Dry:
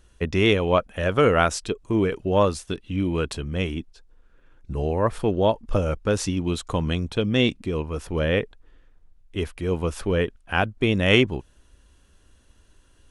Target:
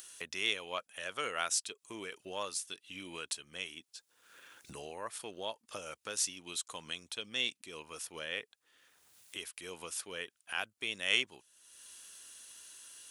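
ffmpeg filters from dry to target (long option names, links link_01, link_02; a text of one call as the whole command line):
ffmpeg -i in.wav -af "highpass=85,aderivative,acompressor=mode=upward:threshold=-38dB:ratio=2.5" out.wav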